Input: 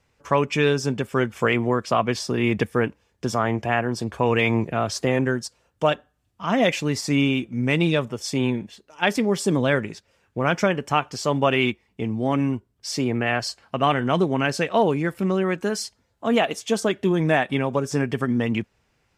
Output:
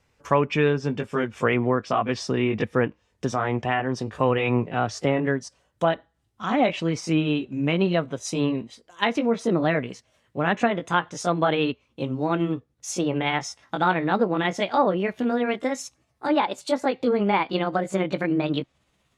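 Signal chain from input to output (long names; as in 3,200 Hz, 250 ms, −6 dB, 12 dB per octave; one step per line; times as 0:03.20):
pitch glide at a constant tempo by +5 semitones starting unshifted
treble cut that deepens with the level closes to 2,300 Hz, closed at −17.5 dBFS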